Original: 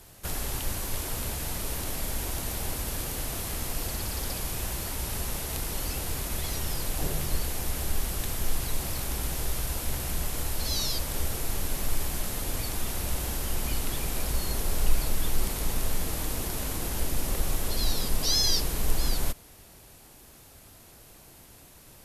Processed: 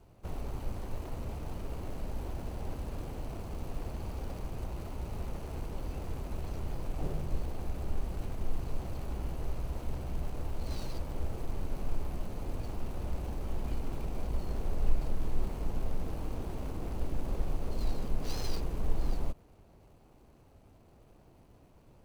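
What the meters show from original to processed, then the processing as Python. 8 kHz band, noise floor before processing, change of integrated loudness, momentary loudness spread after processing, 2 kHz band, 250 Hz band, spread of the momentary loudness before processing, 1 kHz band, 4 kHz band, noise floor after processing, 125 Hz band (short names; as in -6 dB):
-24.0 dB, -52 dBFS, -9.0 dB, 4 LU, -14.5 dB, -3.5 dB, 21 LU, -7.0 dB, -20.0 dB, -59 dBFS, -3.5 dB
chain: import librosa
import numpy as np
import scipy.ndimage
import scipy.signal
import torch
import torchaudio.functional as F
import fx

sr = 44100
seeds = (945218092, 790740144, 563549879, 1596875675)

y = scipy.ndimage.median_filter(x, 25, mode='constant')
y = F.gain(torch.from_numpy(y), -3.5).numpy()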